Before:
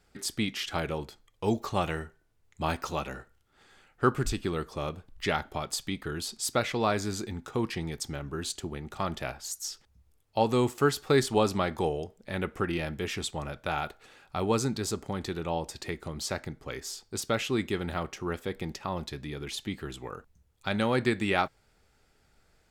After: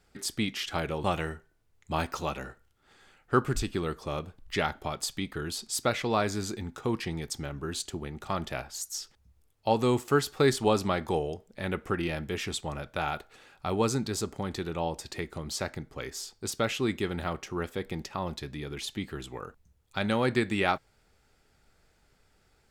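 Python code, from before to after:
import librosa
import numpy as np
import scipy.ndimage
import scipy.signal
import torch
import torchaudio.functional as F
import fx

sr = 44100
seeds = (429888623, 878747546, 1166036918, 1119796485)

y = fx.edit(x, sr, fx.cut(start_s=1.04, length_s=0.7), tone=tone)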